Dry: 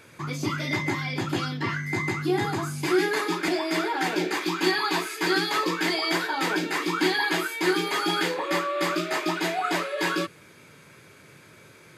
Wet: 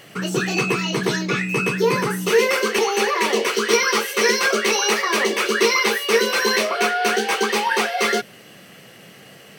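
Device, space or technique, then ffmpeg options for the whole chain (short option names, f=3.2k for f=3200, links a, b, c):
nightcore: -af "asetrate=55125,aresample=44100,volume=6.5dB"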